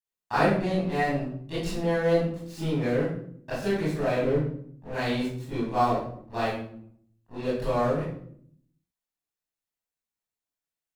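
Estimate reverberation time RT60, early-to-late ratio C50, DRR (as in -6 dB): 0.65 s, -0.5 dB, -13.0 dB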